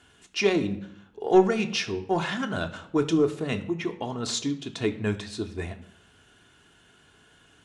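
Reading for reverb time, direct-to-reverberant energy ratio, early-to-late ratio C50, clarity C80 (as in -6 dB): 0.75 s, 4.5 dB, 14.0 dB, 17.0 dB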